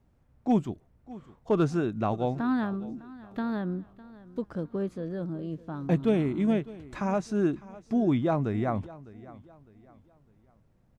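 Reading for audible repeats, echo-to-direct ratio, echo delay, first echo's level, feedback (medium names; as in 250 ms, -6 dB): 2, -18.5 dB, 605 ms, -19.0 dB, 35%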